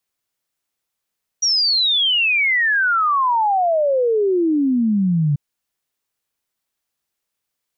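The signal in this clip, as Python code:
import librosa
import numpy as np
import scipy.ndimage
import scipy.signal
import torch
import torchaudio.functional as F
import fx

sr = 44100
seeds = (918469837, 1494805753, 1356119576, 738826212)

y = fx.ess(sr, length_s=3.94, from_hz=5800.0, to_hz=140.0, level_db=-14.0)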